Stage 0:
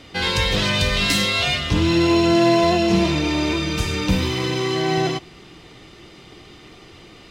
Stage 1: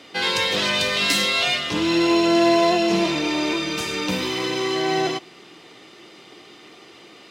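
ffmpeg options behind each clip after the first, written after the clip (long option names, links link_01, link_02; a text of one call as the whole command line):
ffmpeg -i in.wav -af "highpass=270" out.wav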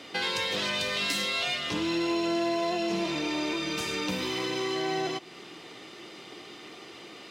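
ffmpeg -i in.wav -af "acompressor=threshold=-31dB:ratio=2.5" out.wav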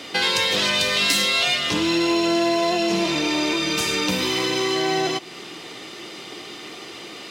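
ffmpeg -i in.wav -af "highshelf=frequency=4000:gain=5.5,volume=7.5dB" out.wav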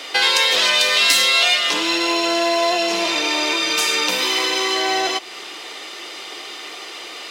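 ffmpeg -i in.wav -af "highpass=540,volume=5dB" out.wav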